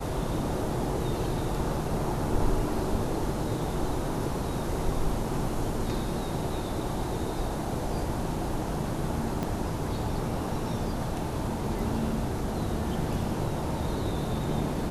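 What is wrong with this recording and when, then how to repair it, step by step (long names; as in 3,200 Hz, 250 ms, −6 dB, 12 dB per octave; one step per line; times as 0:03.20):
0:09.43: click −18 dBFS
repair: click removal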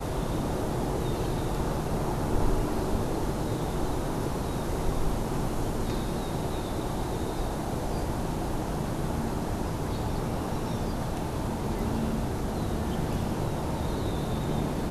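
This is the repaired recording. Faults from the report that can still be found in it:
0:09.43: click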